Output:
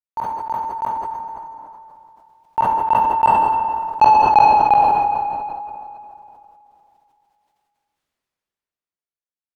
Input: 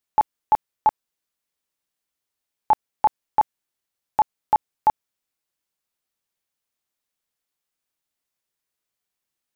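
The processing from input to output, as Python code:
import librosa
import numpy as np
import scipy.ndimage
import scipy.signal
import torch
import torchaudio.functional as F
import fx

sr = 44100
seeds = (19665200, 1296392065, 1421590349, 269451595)

y = fx.doppler_pass(x, sr, speed_mps=16, closest_m=9.0, pass_at_s=4.1)
y = fx.lowpass(y, sr, hz=2300.0, slope=6)
y = fx.leveller(y, sr, passes=1)
y = fx.rev_plate(y, sr, seeds[0], rt60_s=2.7, hf_ratio=0.7, predelay_ms=0, drr_db=12.5)
y = fx.sustainer(y, sr, db_per_s=21.0)
y = F.gain(torch.from_numpy(y), 5.0).numpy()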